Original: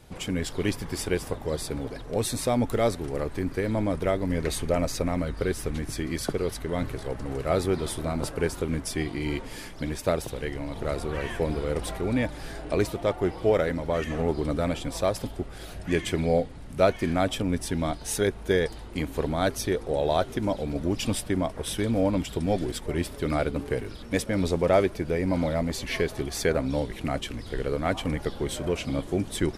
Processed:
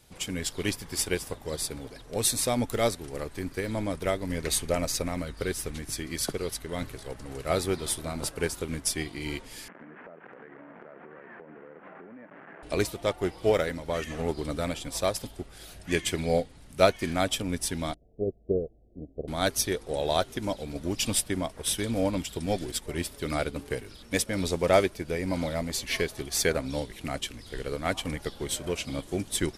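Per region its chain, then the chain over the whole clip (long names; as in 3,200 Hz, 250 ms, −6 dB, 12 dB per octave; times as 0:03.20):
0:09.68–0:12.63: linear delta modulator 16 kbit/s, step −29 dBFS + Chebyshev band-pass filter 180–1,700 Hz, order 3 + downward compressor 12 to 1, threshold −34 dBFS
0:17.94–0:19.28: Butterworth low-pass 720 Hz 96 dB per octave + expander for the loud parts, over −40 dBFS
whole clip: high-shelf EQ 2,500 Hz +11 dB; expander for the loud parts 1.5 to 1, over −34 dBFS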